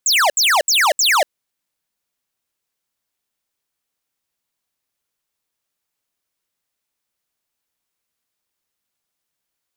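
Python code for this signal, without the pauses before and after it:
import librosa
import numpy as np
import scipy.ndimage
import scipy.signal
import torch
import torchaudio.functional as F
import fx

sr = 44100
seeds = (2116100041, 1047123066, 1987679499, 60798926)

y = fx.laser_zaps(sr, level_db=-14.0, start_hz=8100.0, end_hz=540.0, length_s=0.24, wave='square', shots=4, gap_s=0.07)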